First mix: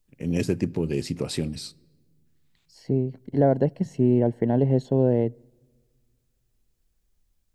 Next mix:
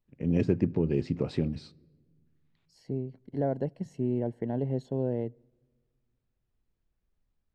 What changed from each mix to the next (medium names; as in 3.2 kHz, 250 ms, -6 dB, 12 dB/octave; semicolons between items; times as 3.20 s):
first voice: add tape spacing loss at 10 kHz 31 dB; second voice -9.5 dB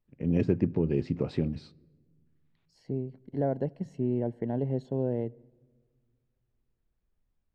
second voice: send +7.0 dB; master: add treble shelf 5.7 kHz -8.5 dB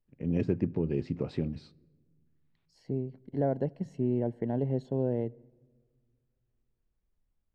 first voice -3.0 dB